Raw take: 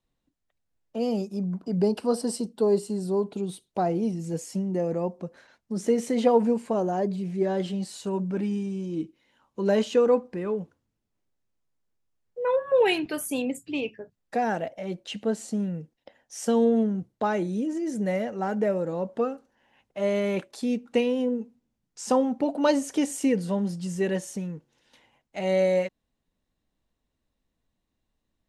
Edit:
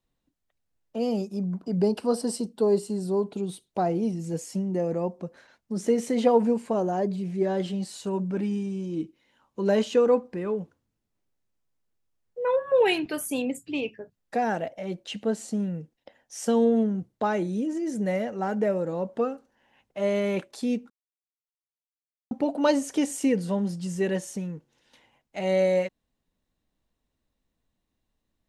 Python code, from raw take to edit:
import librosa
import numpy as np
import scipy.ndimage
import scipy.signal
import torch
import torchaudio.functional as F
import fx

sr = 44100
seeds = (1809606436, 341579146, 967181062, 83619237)

y = fx.edit(x, sr, fx.silence(start_s=20.9, length_s=1.41), tone=tone)